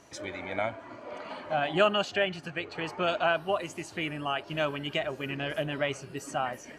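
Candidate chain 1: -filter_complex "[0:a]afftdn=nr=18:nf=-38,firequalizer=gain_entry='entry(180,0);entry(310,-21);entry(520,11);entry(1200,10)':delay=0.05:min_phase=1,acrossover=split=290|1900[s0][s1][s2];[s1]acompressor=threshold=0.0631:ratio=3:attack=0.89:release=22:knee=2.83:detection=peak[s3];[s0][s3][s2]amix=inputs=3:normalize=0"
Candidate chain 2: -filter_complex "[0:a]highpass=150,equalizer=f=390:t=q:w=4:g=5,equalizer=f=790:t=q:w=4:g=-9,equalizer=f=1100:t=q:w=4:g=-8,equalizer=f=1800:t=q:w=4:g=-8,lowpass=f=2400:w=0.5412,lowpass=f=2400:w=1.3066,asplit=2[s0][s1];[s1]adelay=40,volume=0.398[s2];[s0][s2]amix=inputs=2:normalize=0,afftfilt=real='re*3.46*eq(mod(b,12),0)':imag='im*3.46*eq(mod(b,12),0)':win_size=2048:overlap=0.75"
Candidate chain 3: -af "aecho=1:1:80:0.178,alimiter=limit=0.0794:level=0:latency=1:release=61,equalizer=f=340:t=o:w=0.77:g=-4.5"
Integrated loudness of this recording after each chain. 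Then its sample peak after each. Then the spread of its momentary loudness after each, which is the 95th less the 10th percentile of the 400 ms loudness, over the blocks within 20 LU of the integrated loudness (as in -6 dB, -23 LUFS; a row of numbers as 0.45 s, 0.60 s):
-25.5 LUFS, -39.5 LUFS, -35.0 LUFS; -8.0 dBFS, -20.5 dBFS, -22.0 dBFS; 11 LU, 10 LU, 8 LU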